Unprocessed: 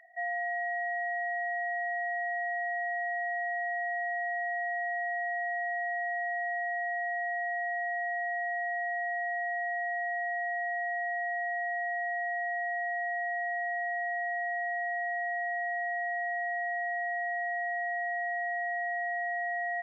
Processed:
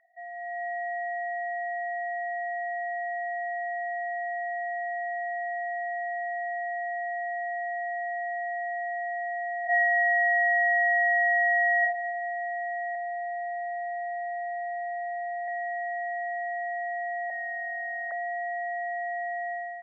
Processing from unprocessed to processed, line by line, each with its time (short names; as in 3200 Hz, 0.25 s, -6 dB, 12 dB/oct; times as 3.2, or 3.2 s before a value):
9.63–11.8 reverb throw, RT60 0.97 s, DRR -8 dB
12.95–15.48 LPF 1600 Hz
17.3–18.12 sine-wave speech
whole clip: LPF 1100 Hz 6 dB/oct; AGC gain up to 9.5 dB; gain -5.5 dB